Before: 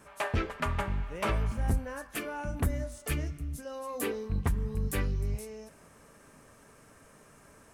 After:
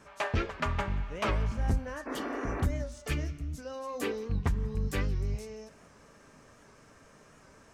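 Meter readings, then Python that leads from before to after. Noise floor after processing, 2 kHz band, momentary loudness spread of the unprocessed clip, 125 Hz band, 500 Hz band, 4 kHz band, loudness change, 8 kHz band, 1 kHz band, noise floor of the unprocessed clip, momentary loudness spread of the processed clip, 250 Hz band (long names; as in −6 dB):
−58 dBFS, 0.0 dB, 8 LU, 0.0 dB, +0.5 dB, +1.0 dB, 0.0 dB, −4.5 dB, +0.5 dB, −58 dBFS, 8 LU, +0.5 dB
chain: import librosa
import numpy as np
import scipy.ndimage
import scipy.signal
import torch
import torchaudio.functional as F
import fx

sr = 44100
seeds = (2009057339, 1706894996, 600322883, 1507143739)

p1 = fx.spec_repair(x, sr, seeds[0], start_s=2.1, length_s=0.51, low_hz=250.0, high_hz=2800.0, source='after')
p2 = fx.high_shelf_res(p1, sr, hz=7900.0, db=-9.0, q=1.5)
p3 = p2 + fx.echo_single(p2, sr, ms=177, db=-23.0, dry=0)
y = fx.record_warp(p3, sr, rpm=78.0, depth_cents=100.0)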